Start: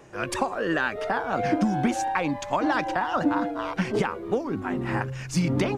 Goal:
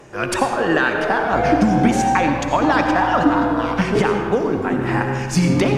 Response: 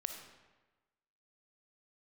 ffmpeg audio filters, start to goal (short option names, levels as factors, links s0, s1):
-filter_complex "[0:a]asettb=1/sr,asplit=3[s0][s1][s2];[s0]atrim=end=1.324[s3];[s1]atrim=start=1.32:end=3.99,asetpts=PTS-STARTPTS,afade=t=in:d=0.004:c=qsin,afade=t=out:st=2.666:d=0.004:c=qsin,aeval=exprs='val(0)+0.0158*(sin(2*PI*60*n/s)+sin(2*PI*2*60*n/s)/2+sin(2*PI*3*60*n/s)/3+sin(2*PI*4*60*n/s)/4+sin(2*PI*5*60*n/s)/5)':c=same[s4];[s2]atrim=start=3.986[s5];[s3][s4]acrossfade=d=0.004:c1=hsin:c2=qsin[s6];[s6][s5]acrossfade=d=0.004:c1=qsin:c2=hsin[s7];[1:a]atrim=start_sample=2205,asetrate=28224,aresample=44100[s8];[s7][s8]afir=irnorm=-1:irlink=0,volume=2.11"